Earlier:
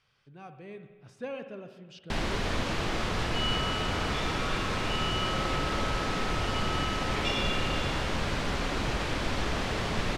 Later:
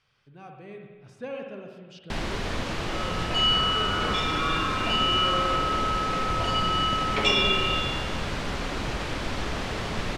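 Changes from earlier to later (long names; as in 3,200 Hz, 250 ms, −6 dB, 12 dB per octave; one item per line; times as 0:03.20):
speech: send +6.5 dB
second sound +10.5 dB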